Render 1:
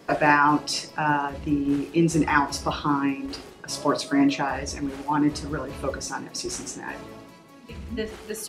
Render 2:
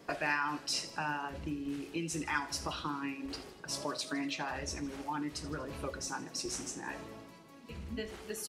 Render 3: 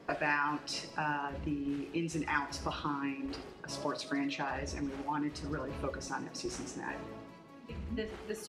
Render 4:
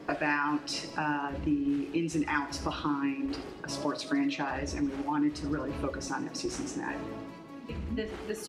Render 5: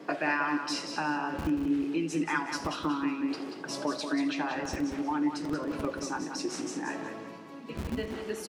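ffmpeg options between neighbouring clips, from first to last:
-filter_complex "[0:a]acrossover=split=1800[a][b];[a]acompressor=threshold=-29dB:ratio=6[c];[b]aecho=1:1:80|160|240|320|400:0.158|0.0903|0.0515|0.0294|0.0167[d];[c][d]amix=inputs=2:normalize=0,volume=-6.5dB"
-af "lowpass=f=2.5k:p=1,volume=2.5dB"
-filter_complex "[0:a]equalizer=f=300:t=o:w=0.25:g=7,asplit=2[a][b];[b]acompressor=threshold=-41dB:ratio=6,volume=0dB[c];[a][c]amix=inputs=2:normalize=0"
-filter_complex "[0:a]acrossover=split=140[a][b];[a]acrusher=bits=5:mix=0:aa=0.000001[c];[c][b]amix=inputs=2:normalize=0,aecho=1:1:184|368|552|736:0.422|0.122|0.0355|0.0103"

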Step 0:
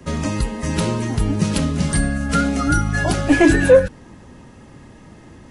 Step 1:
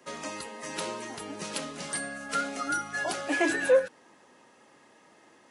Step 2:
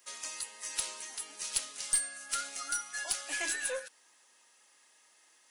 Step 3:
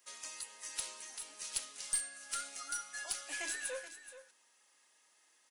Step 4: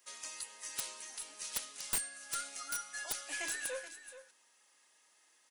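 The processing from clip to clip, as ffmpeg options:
-af "highpass=490,volume=-8dB"
-af "aderivative,aeval=exprs='0.112*(cos(1*acos(clip(val(0)/0.112,-1,1)))-cos(1*PI/2))+0.00562*(cos(4*acos(clip(val(0)/0.112,-1,1)))-cos(4*PI/2))+0.00141*(cos(7*acos(clip(val(0)/0.112,-1,1)))-cos(7*PI/2))':c=same,volume=5.5dB"
-af "aecho=1:1:428:0.224,volume=-5.5dB"
-af "aeval=exprs='(mod(21.1*val(0)+1,2)-1)/21.1':c=same,volume=1dB"

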